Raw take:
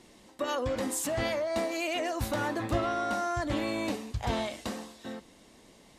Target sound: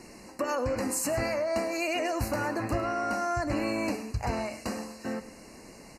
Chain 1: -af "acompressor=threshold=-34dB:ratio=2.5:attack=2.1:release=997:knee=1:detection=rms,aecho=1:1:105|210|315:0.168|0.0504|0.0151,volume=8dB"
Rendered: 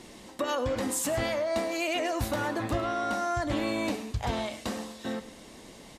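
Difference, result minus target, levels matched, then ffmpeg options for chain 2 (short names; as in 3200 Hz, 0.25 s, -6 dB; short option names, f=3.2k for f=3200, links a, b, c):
4000 Hz band +3.5 dB
-af "acompressor=threshold=-34dB:ratio=2.5:attack=2.1:release=997:knee=1:detection=rms,asuperstop=centerf=3400:order=20:qfactor=3,aecho=1:1:105|210|315:0.168|0.0504|0.0151,volume=8dB"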